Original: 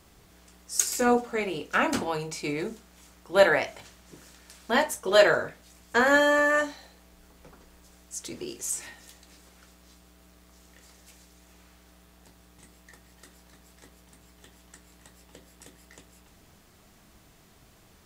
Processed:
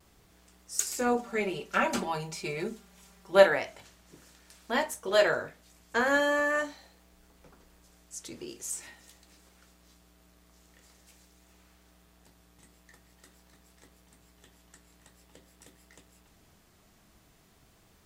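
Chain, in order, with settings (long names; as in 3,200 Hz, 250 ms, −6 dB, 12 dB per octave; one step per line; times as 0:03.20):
0:01.19–0:03.47: comb filter 5.1 ms, depth 92%
pitch vibrato 0.46 Hz 19 cents
level −5 dB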